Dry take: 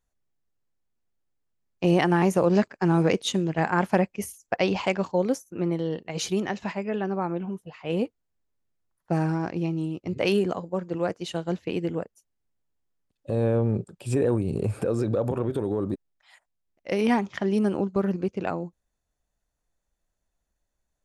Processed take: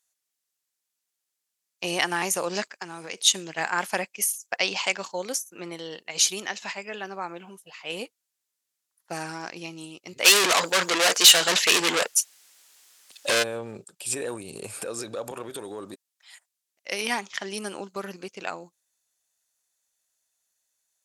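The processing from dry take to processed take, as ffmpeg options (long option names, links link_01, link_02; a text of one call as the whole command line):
ffmpeg -i in.wav -filter_complex "[0:a]asplit=3[link_01][link_02][link_03];[link_01]afade=type=out:start_time=2.69:duration=0.02[link_04];[link_02]acompressor=threshold=-26dB:ratio=12:attack=3.2:release=140:knee=1:detection=peak,afade=type=in:start_time=2.69:duration=0.02,afade=type=out:start_time=3.17:duration=0.02[link_05];[link_03]afade=type=in:start_time=3.17:duration=0.02[link_06];[link_04][link_05][link_06]amix=inputs=3:normalize=0,asplit=3[link_07][link_08][link_09];[link_07]afade=type=out:start_time=10.24:duration=0.02[link_10];[link_08]asplit=2[link_11][link_12];[link_12]highpass=frequency=720:poles=1,volume=36dB,asoftclip=type=tanh:threshold=-11dB[link_13];[link_11][link_13]amix=inputs=2:normalize=0,lowpass=frequency=5900:poles=1,volume=-6dB,afade=type=in:start_time=10.24:duration=0.02,afade=type=out:start_time=13.42:duration=0.02[link_14];[link_09]afade=type=in:start_time=13.42:duration=0.02[link_15];[link_10][link_14][link_15]amix=inputs=3:normalize=0,highpass=frequency=1200:poles=1,equalizer=frequency=10000:width_type=o:width=2.9:gain=14.5" out.wav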